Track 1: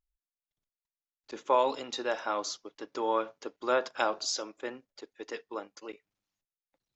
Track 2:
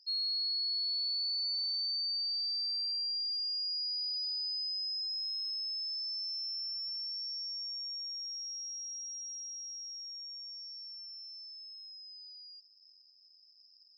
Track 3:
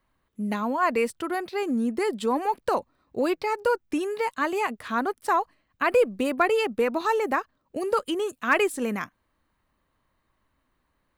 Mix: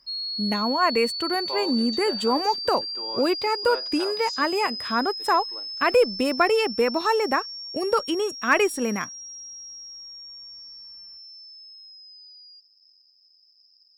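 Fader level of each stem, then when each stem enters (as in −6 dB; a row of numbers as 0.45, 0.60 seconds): −8.5, +3.0, +2.0 decibels; 0.00, 0.00, 0.00 seconds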